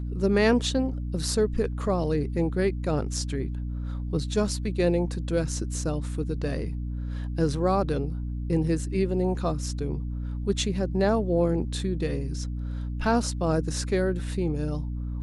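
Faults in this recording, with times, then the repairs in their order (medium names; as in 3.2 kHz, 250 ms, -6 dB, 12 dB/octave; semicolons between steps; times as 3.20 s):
hum 60 Hz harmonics 5 -31 dBFS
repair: de-hum 60 Hz, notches 5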